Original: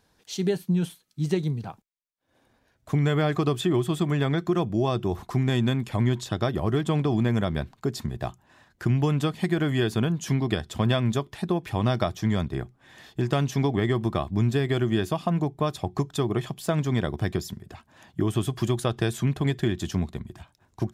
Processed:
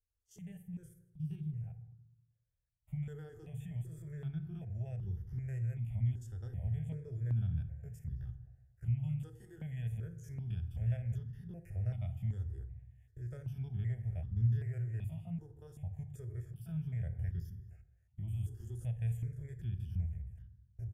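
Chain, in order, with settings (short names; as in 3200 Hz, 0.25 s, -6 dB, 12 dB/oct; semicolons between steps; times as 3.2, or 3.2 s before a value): stepped spectrum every 50 ms; outdoor echo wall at 37 m, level -21 dB; gate -48 dBFS, range -12 dB; passive tone stack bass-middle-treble 10-0-1; fixed phaser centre 1100 Hz, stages 6; on a send at -9 dB: low shelf 89 Hz +11 dB + reverb RT60 1.1 s, pre-delay 3 ms; on the sum: step phaser 2.6 Hz 630–2400 Hz; gain +5.5 dB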